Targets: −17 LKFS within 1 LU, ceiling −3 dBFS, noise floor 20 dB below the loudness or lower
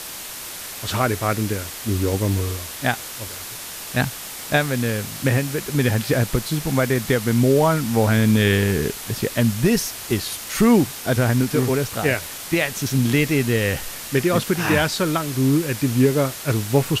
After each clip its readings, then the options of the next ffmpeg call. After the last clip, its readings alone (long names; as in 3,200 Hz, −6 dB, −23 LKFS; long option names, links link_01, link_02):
background noise floor −34 dBFS; target noise floor −41 dBFS; integrated loudness −21.0 LKFS; sample peak −5.5 dBFS; target loudness −17.0 LKFS
→ -af "afftdn=noise_reduction=7:noise_floor=-34"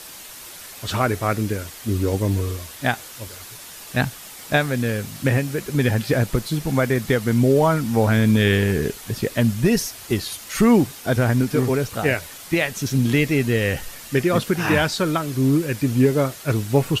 background noise floor −39 dBFS; target noise floor −41 dBFS
→ -af "afftdn=noise_reduction=6:noise_floor=-39"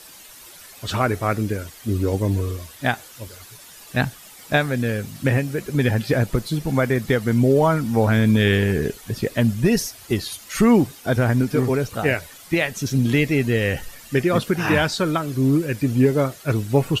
background noise floor −44 dBFS; integrated loudness −21.0 LKFS; sample peak −5.5 dBFS; target loudness −17.0 LKFS
→ -af "volume=4dB,alimiter=limit=-3dB:level=0:latency=1"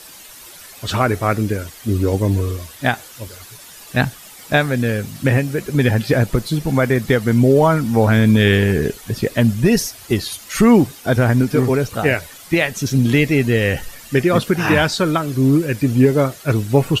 integrated loudness −17.0 LKFS; sample peak −3.0 dBFS; background noise floor −40 dBFS